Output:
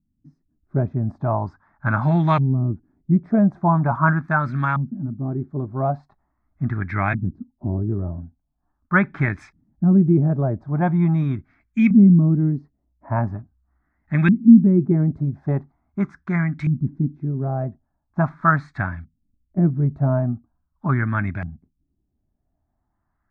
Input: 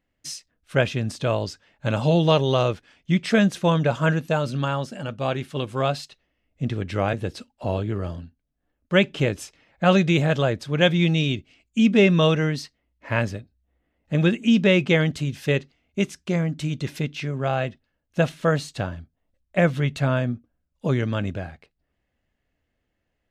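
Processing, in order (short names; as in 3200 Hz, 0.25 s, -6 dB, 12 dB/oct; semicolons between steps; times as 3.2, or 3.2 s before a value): fixed phaser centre 1200 Hz, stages 4; LFO low-pass saw up 0.42 Hz 200–2400 Hz; dynamic EQ 2300 Hz, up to +6 dB, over -53 dBFS, Q 4.7; gain +4 dB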